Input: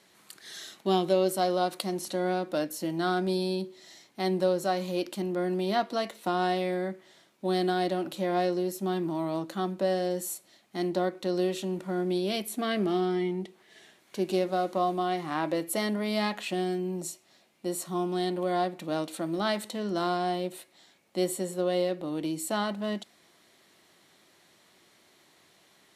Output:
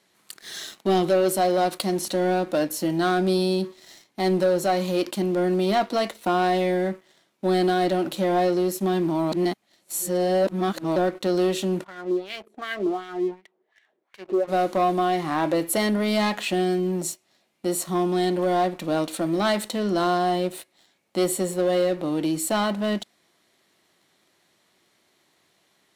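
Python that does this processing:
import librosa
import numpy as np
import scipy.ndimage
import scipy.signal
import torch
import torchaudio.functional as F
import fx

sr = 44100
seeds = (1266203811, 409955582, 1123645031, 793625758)

y = fx.filter_lfo_bandpass(x, sr, shape='sine', hz=2.7, low_hz=370.0, high_hz=2100.0, q=2.4, at=(11.83, 14.47), fade=0.02)
y = fx.edit(y, sr, fx.reverse_span(start_s=9.32, length_s=1.64), tone=tone)
y = fx.leveller(y, sr, passes=2)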